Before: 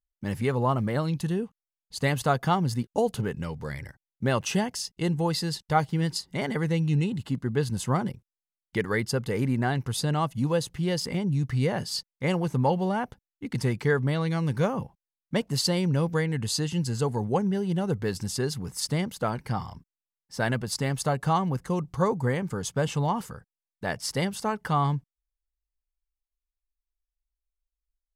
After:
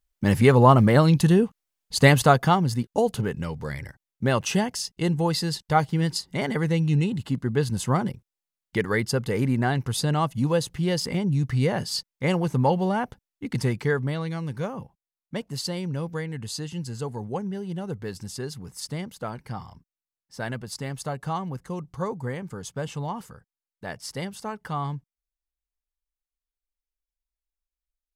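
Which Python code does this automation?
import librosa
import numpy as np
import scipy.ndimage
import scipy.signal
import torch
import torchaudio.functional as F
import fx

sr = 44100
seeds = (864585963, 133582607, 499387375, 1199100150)

y = fx.gain(x, sr, db=fx.line((2.07, 10.0), (2.65, 2.5), (13.56, 2.5), (14.54, -5.0)))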